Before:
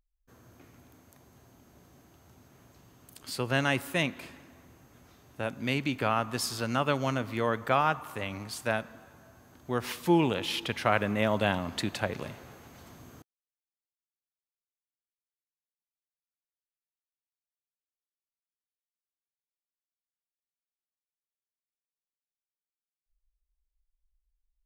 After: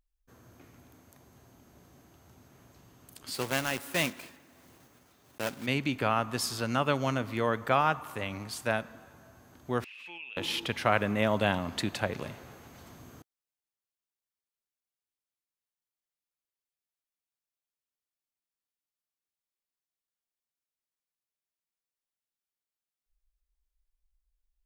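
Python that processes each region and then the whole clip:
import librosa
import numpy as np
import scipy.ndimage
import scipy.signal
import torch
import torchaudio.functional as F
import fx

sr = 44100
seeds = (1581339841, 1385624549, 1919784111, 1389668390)

y = fx.chain(x, sr, fx.block_float(bits=3),
    fx.low_shelf(hz=110.0, db=-10.5),
    fx.tremolo(hz=1.4, depth=0.43), at=(3.34, 5.68))
y = fx.chain(y, sr, fx.bandpass_q(hz=2600.0, q=17.0),
    fx.pre_swell(db_per_s=23.0), at=(9.84, 10.37))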